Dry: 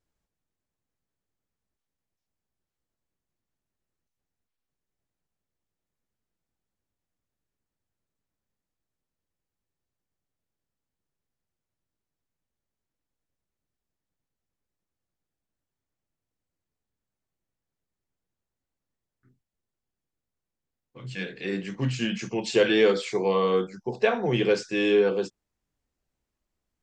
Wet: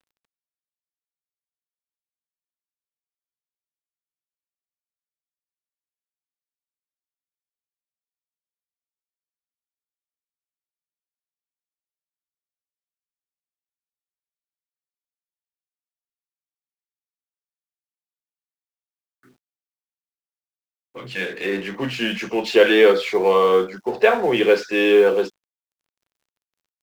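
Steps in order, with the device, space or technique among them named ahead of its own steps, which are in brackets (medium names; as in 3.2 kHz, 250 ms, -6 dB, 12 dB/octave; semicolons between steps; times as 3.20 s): phone line with mismatched companding (band-pass 340–3300 Hz; companding laws mixed up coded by mu); trim +8 dB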